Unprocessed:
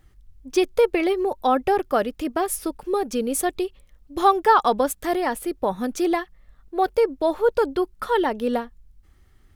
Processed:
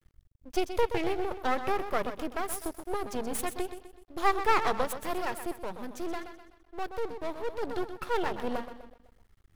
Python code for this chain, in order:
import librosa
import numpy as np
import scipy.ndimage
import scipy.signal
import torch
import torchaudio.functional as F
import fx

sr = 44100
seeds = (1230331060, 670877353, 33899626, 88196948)

y = fx.echo_feedback(x, sr, ms=126, feedback_pct=43, wet_db=-10.5)
y = fx.tube_stage(y, sr, drive_db=13.0, bias=0.6, at=(5.58, 7.63))
y = np.maximum(y, 0.0)
y = F.gain(torch.from_numpy(y), -5.0).numpy()